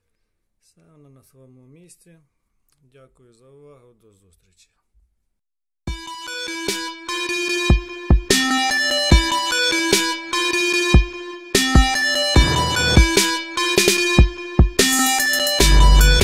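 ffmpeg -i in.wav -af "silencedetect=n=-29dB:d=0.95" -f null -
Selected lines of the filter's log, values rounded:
silence_start: 0.00
silence_end: 5.88 | silence_duration: 5.88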